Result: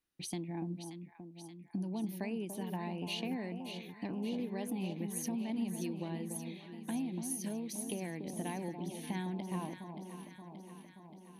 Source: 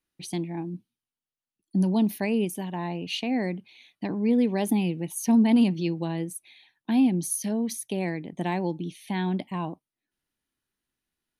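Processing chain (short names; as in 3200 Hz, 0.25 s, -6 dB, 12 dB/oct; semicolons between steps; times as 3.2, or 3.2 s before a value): compressor, threshold -33 dBFS, peak gain reduction 16 dB; on a send: echo with dull and thin repeats by turns 0.289 s, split 990 Hz, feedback 79%, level -6.5 dB; on the sum: gain -3.5 dB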